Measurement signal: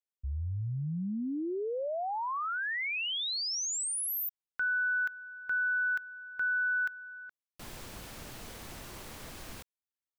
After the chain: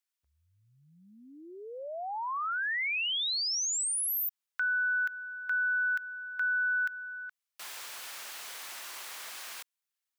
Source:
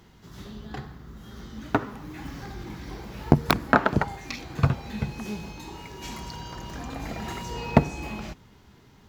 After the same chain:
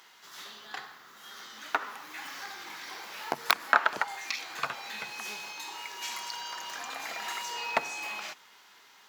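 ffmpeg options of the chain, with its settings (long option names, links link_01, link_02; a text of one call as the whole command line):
ffmpeg -i in.wav -filter_complex "[0:a]highpass=1100,asplit=2[link_01][link_02];[link_02]acompressor=threshold=-44dB:ratio=6:release=67:detection=rms,volume=0.5dB[link_03];[link_01][link_03]amix=inputs=2:normalize=0" out.wav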